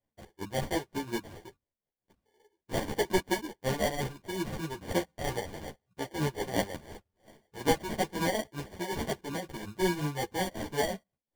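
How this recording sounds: tremolo triangle 5.5 Hz, depth 80%; aliases and images of a low sample rate 1300 Hz, jitter 0%; a shimmering, thickened sound

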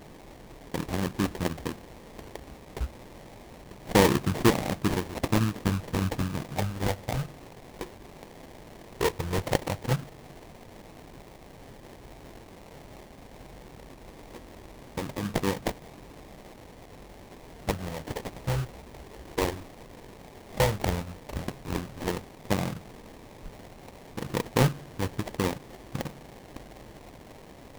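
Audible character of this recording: a quantiser's noise floor 8-bit, dither triangular; phasing stages 8, 0.09 Hz, lowest notch 200–4300 Hz; aliases and images of a low sample rate 1400 Hz, jitter 20%

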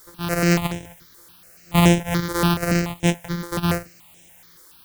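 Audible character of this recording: a buzz of ramps at a fixed pitch in blocks of 256 samples; tremolo triangle 0.77 Hz, depth 65%; a quantiser's noise floor 10-bit, dither triangular; notches that jump at a steady rate 7 Hz 720–4500 Hz

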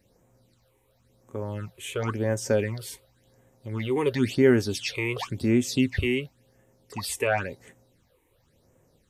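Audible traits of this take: phasing stages 8, 0.94 Hz, lowest notch 180–4400 Hz

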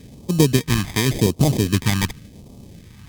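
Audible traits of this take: aliases and images of a low sample rate 1400 Hz, jitter 0%; phasing stages 2, 0.89 Hz, lowest notch 490–1600 Hz; Opus

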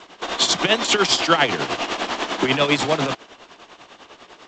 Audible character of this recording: tremolo triangle 10 Hz, depth 80%; G.722

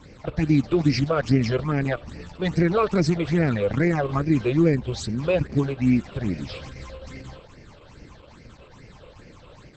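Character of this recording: phasing stages 8, 2.4 Hz, lowest notch 230–1100 Hz; Opus

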